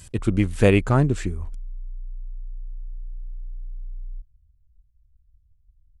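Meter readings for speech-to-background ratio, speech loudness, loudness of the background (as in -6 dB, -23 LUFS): 20.0 dB, -20.5 LUFS, -40.5 LUFS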